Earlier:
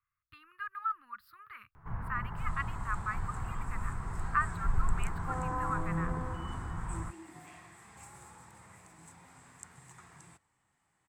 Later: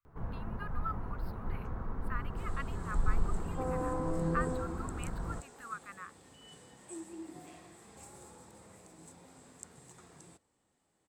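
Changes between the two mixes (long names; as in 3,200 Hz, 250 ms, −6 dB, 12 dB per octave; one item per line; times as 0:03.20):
first sound: entry −1.70 s
master: add graphic EQ with 10 bands 125 Hz −5 dB, 250 Hz +5 dB, 500 Hz +9 dB, 1,000 Hz −6 dB, 2,000 Hz −7 dB, 4,000 Hz +4 dB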